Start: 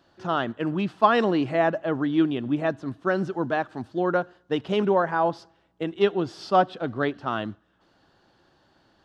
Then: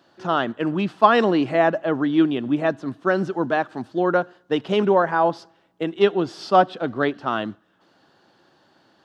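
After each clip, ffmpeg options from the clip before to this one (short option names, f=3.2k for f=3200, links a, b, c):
-af "highpass=150,volume=4dB"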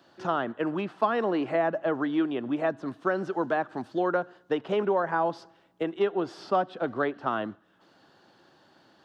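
-filter_complex "[0:a]acrossover=split=360|2100[a][b][c];[a]acompressor=threshold=-36dB:ratio=4[d];[b]acompressor=threshold=-23dB:ratio=4[e];[c]acompressor=threshold=-49dB:ratio=4[f];[d][e][f]amix=inputs=3:normalize=0,volume=-1dB"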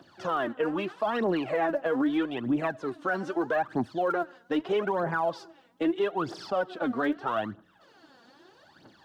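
-af "aphaser=in_gain=1:out_gain=1:delay=4.4:decay=0.71:speed=0.79:type=triangular,alimiter=limit=-19dB:level=0:latency=1:release=26"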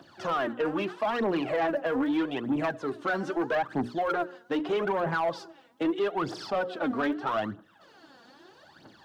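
-af "bandreject=f=60:t=h:w=6,bandreject=f=120:t=h:w=6,bandreject=f=180:t=h:w=6,bandreject=f=240:t=h:w=6,bandreject=f=300:t=h:w=6,bandreject=f=360:t=h:w=6,bandreject=f=420:t=h:w=6,bandreject=f=480:t=h:w=6,bandreject=f=540:t=h:w=6,asoftclip=type=tanh:threshold=-23.5dB,volume=2.5dB"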